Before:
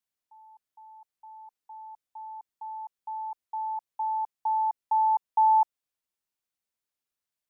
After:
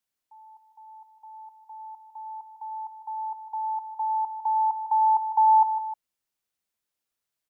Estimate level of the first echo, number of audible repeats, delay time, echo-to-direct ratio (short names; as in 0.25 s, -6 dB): -10.5 dB, 2, 0.154 s, -9.0 dB